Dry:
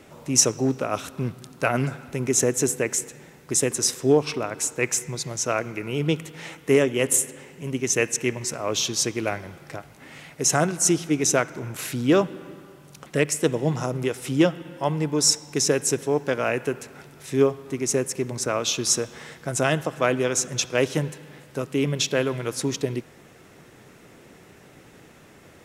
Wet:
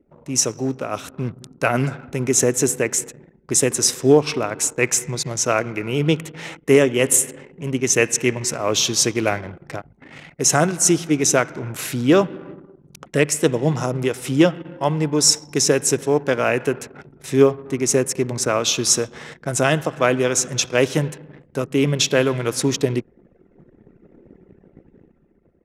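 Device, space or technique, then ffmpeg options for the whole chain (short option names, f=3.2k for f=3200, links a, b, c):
voice memo with heavy noise removal: -af "anlmdn=0.158,dynaudnorm=f=210:g=9:m=11.5dB,volume=-1dB"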